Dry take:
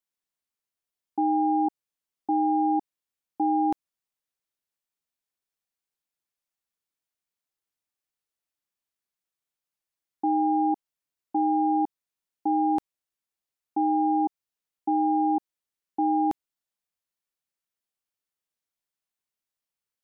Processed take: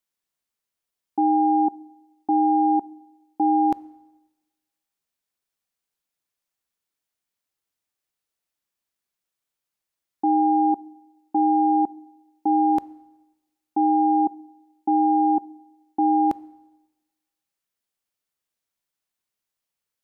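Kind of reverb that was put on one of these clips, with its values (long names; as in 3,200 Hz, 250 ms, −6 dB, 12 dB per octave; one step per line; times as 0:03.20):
dense smooth reverb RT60 1.1 s, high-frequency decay 0.95×, DRR 19.5 dB
level +4 dB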